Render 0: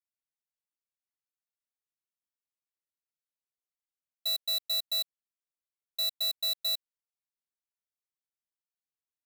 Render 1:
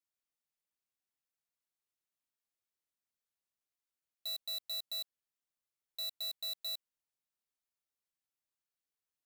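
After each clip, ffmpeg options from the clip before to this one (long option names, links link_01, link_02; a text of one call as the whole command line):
ffmpeg -i in.wav -af "asoftclip=type=hard:threshold=-38dB" out.wav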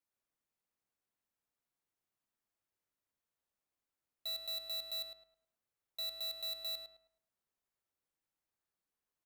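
ffmpeg -i in.wav -filter_complex "[0:a]asplit=2[link_01][link_02];[link_02]adynamicsmooth=sensitivity=7.5:basefreq=2500,volume=0.5dB[link_03];[link_01][link_03]amix=inputs=2:normalize=0,asplit=2[link_04][link_05];[link_05]adelay=106,lowpass=frequency=2200:poles=1,volume=-4dB,asplit=2[link_06][link_07];[link_07]adelay=106,lowpass=frequency=2200:poles=1,volume=0.36,asplit=2[link_08][link_09];[link_09]adelay=106,lowpass=frequency=2200:poles=1,volume=0.36,asplit=2[link_10][link_11];[link_11]adelay=106,lowpass=frequency=2200:poles=1,volume=0.36,asplit=2[link_12][link_13];[link_13]adelay=106,lowpass=frequency=2200:poles=1,volume=0.36[link_14];[link_04][link_06][link_08][link_10][link_12][link_14]amix=inputs=6:normalize=0,volume=-2dB" out.wav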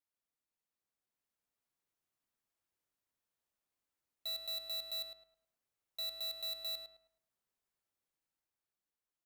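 ffmpeg -i in.wav -af "dynaudnorm=framelen=260:gausssize=9:maxgain=5dB,volume=-5dB" out.wav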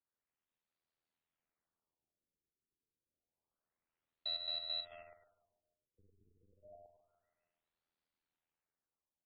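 ffmpeg -i in.wav -af "aeval=exprs='val(0)*sin(2*PI*41*n/s)':channel_layout=same,aecho=1:1:144|288|432|576|720:0.2|0.106|0.056|0.0297|0.0157,afftfilt=real='re*lt(b*sr/1024,460*pow(5100/460,0.5+0.5*sin(2*PI*0.28*pts/sr)))':imag='im*lt(b*sr/1024,460*pow(5100/460,0.5+0.5*sin(2*PI*0.28*pts/sr)))':win_size=1024:overlap=0.75,volume=4dB" out.wav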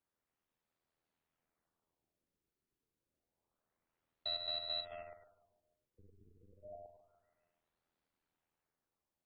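ffmpeg -i in.wav -af "highshelf=frequency=2100:gain=-9.5,volume=7.5dB" out.wav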